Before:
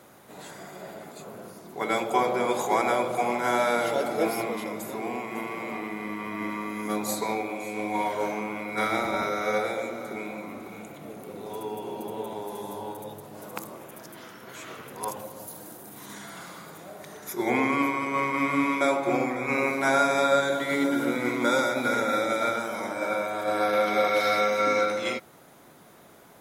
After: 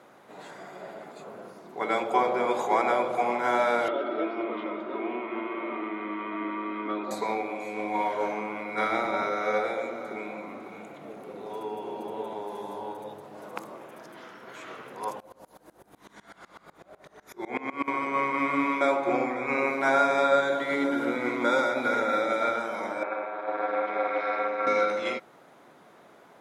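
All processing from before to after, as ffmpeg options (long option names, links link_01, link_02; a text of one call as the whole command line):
ffmpeg -i in.wav -filter_complex "[0:a]asettb=1/sr,asplit=3[link_01][link_02][link_03];[link_01]atrim=end=3.884[link_04];[link_02]atrim=start=3.88:end=7.11,asetpts=PTS-STARTPTS,afade=type=in:duration=0.004:curve=qsin,afade=type=out:start_time=3.226:duration=0.004:curve=qsin,aecho=1:1:3.2:0.48,atrim=end_sample=142443,acrossover=split=620|1800[link_05][link_06][link_07];[link_05]acompressor=threshold=-29dB:ratio=4[link_08];[link_06]acompressor=threshold=-39dB:ratio=4[link_09];[link_07]acompressor=threshold=-44dB:ratio=4[link_10];[link_08][link_09][link_10]amix=inputs=3:normalize=0,highpass=190,equalizer=frequency=370:width_type=q:width=4:gain=6,equalizer=frequency=820:width_type=q:width=4:gain=-3,equalizer=frequency=1300:width_type=q:width=4:gain=9,equalizer=frequency=3300:width_type=q:width=4:gain=8,lowpass=frequency=3400:width=0.5412,lowpass=frequency=3400:width=1.3066[link_11];[link_03]atrim=start=7.106[link_12];[link_04][link_11]acrossfade=duration=0.004:curve1=hsin:curve2=qsin[link_13];[link_13][link_12]acrossfade=duration=0.004:curve1=qsin:curve2=hsin,asettb=1/sr,asplit=3[link_14][link_15][link_16];[link_14]atrim=end=15.204[link_17];[link_15]atrim=start=15.2:end=17.88,asetpts=PTS-STARTPTS,afade=type=in:duration=0.004:curve=qsin,afade=type=out:start_time=2.676:duration=0.004:curve=qsin,aeval=exprs='val(0)+0.00316*(sin(2*PI*50*n/s)+sin(2*PI*2*50*n/s)/2+sin(2*PI*3*50*n/s)/3+sin(2*PI*4*50*n/s)/4+sin(2*PI*5*50*n/s)/5)':channel_layout=same,aeval=exprs='val(0)*pow(10,-24*if(lt(mod(-8*n/s,1),2*abs(-8)/1000),1-mod(-8*n/s,1)/(2*abs(-8)/1000),(mod(-8*n/s,1)-2*abs(-8)/1000)/(1-2*abs(-8)/1000))/20)':channel_layout=same[link_18];[link_16]atrim=start=17.876[link_19];[link_17][link_18]acrossfade=duration=0.004:curve1=hsin:curve2=qsin[link_20];[link_20][link_19]acrossfade=duration=0.004:curve1=qsin:curve2=hsin,asettb=1/sr,asplit=3[link_21][link_22][link_23];[link_21]atrim=end=23.034[link_24];[link_22]atrim=start=23.03:end=24.67,asetpts=PTS-STARTPTS,afade=type=in:duration=0.004:curve=qsin,afade=type=out:start_time=1.636:duration=0.004:curve=qsin,tremolo=f=230:d=0.824,highpass=310,lowpass=2300[link_25];[link_23]atrim=start=24.666[link_26];[link_24][link_25]acrossfade=duration=0.004:curve1=hsin:curve2=qsin[link_27];[link_27][link_26]acrossfade=duration=0.004:curve1=qsin:curve2=hsin,highpass=frequency=370:poles=1,aemphasis=mode=reproduction:type=75fm,volume=1dB" out.wav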